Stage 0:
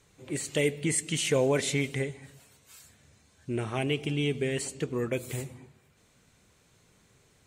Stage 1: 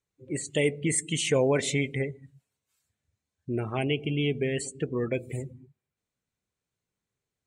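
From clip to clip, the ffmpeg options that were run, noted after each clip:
-af "afftdn=nr=26:nf=-39,volume=1.5dB"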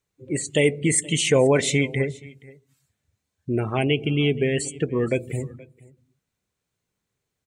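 -af "aecho=1:1:475:0.075,volume=6dB"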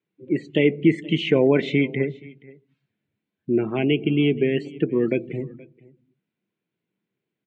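-af "highpass=f=140:w=0.5412,highpass=f=140:w=1.3066,equalizer=f=200:t=q:w=4:g=6,equalizer=f=330:t=q:w=4:g=8,equalizer=f=550:t=q:w=4:g=-4,equalizer=f=810:t=q:w=4:g=-5,equalizer=f=1.2k:t=q:w=4:g=-8,equalizer=f=1.8k:t=q:w=4:g=-3,lowpass=f=3.1k:w=0.5412,lowpass=f=3.1k:w=1.3066"

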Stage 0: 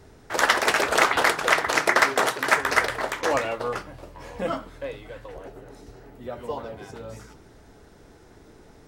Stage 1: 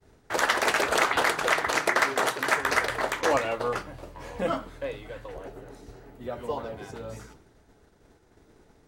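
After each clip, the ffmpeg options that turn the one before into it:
-af "bandreject=f=5.3k:w=24,agate=range=-33dB:threshold=-43dB:ratio=3:detection=peak,alimiter=limit=-11.5dB:level=0:latency=1:release=167"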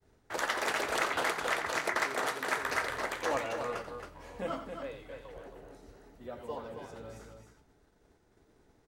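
-af "aecho=1:1:87.46|271.1:0.282|0.447,volume=-8.5dB"

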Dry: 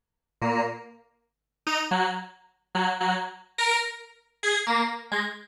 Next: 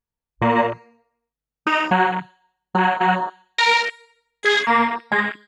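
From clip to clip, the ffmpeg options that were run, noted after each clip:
-filter_complex "[0:a]afwtdn=0.0316,asplit=2[a][b];[b]acompressor=threshold=-32dB:ratio=6,volume=1dB[c];[a][c]amix=inputs=2:normalize=0,volume=5dB"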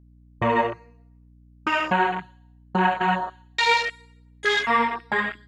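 -af "aphaser=in_gain=1:out_gain=1:delay=2.7:decay=0.27:speed=0.7:type=triangular,aeval=exprs='val(0)+0.00447*(sin(2*PI*60*n/s)+sin(2*PI*2*60*n/s)/2+sin(2*PI*3*60*n/s)/3+sin(2*PI*4*60*n/s)/4+sin(2*PI*5*60*n/s)/5)':c=same,volume=-4dB"

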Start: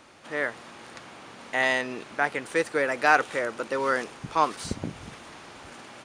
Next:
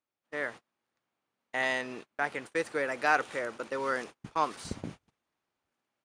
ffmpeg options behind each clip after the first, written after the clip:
-af "agate=range=-34dB:threshold=-36dB:ratio=16:detection=peak,volume=-6dB"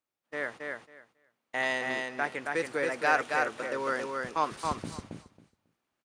-af "aecho=1:1:273|546|819:0.668|0.107|0.0171"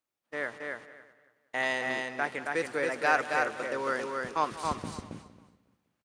-filter_complex "[0:a]asplit=2[a][b];[b]adelay=187,lowpass=f=4.4k:p=1,volume=-16dB,asplit=2[c][d];[d]adelay=187,lowpass=f=4.4k:p=1,volume=0.47,asplit=2[e][f];[f]adelay=187,lowpass=f=4.4k:p=1,volume=0.47,asplit=2[g][h];[h]adelay=187,lowpass=f=4.4k:p=1,volume=0.47[i];[a][c][e][g][i]amix=inputs=5:normalize=0"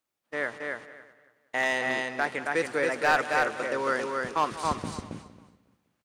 -af "volume=19.5dB,asoftclip=hard,volume=-19.5dB,volume=3.5dB"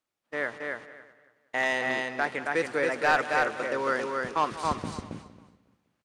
-af "highshelf=f=10k:g=-9.5"

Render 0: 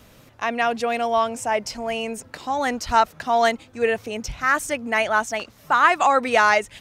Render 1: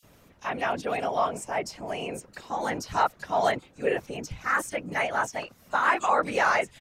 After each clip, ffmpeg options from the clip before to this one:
-filter_complex "[0:a]afftfilt=real='hypot(re,im)*cos(2*PI*random(0))':imag='hypot(re,im)*sin(2*PI*random(1))':win_size=512:overlap=0.75,acrossover=split=3700[a][b];[a]adelay=30[c];[c][b]amix=inputs=2:normalize=0"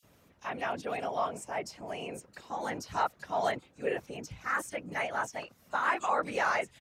-af "highpass=49,volume=-6dB"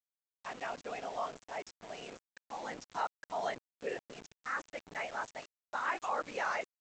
-af "equalizer=f=62:t=o:w=2.5:g=-10.5,aresample=16000,aeval=exprs='val(0)*gte(abs(val(0)),0.00891)':c=same,aresample=44100,volume=-5.5dB"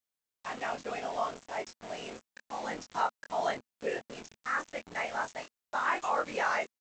-filter_complex "[0:a]equalizer=f=230:t=o:w=0.25:g=3.5,asplit=2[a][b];[b]adelay=23,volume=-5dB[c];[a][c]amix=inputs=2:normalize=0,volume=3.5dB"

